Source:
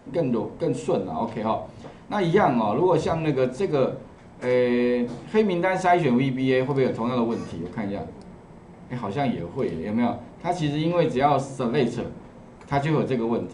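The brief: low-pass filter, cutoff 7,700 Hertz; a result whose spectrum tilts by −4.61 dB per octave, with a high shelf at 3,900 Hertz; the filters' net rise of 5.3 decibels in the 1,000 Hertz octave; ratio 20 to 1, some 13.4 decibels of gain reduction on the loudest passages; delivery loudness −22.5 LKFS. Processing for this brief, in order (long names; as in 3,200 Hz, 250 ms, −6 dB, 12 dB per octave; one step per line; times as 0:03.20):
low-pass filter 7,700 Hz
parametric band 1,000 Hz +8 dB
high-shelf EQ 3,900 Hz −8.5 dB
downward compressor 20 to 1, threshold −24 dBFS
level +7.5 dB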